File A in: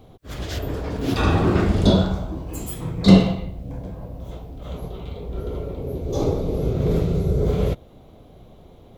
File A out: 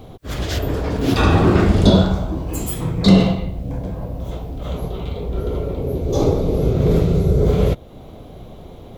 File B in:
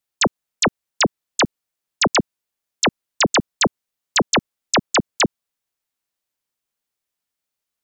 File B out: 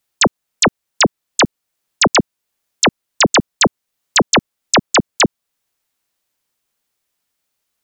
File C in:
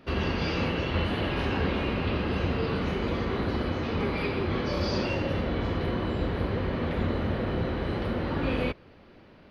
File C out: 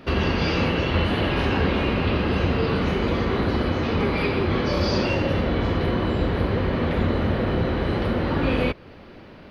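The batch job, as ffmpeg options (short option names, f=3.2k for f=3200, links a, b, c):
-filter_complex "[0:a]asplit=2[a][b];[b]acompressor=threshold=-35dB:ratio=6,volume=-2dB[c];[a][c]amix=inputs=2:normalize=0,alimiter=level_in=5dB:limit=-1dB:release=50:level=0:latency=1,volume=-1dB"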